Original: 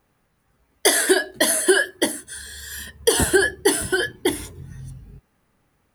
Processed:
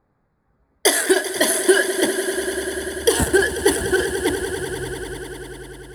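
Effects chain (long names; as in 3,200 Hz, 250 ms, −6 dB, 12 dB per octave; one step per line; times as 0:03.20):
adaptive Wiener filter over 15 samples
echo that builds up and dies away 98 ms, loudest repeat 5, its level −14 dB
level +1 dB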